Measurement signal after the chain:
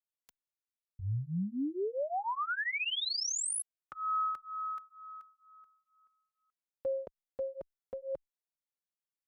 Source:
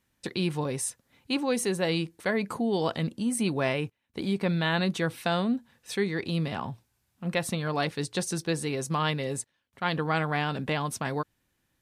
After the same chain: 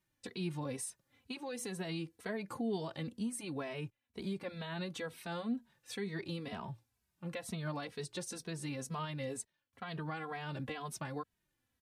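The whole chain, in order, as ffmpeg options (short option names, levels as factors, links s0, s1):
-filter_complex "[0:a]alimiter=limit=0.0794:level=0:latency=1:release=151,asplit=2[s0][s1];[s1]adelay=2.8,afreqshift=-2.1[s2];[s0][s2]amix=inputs=2:normalize=1,volume=0.531"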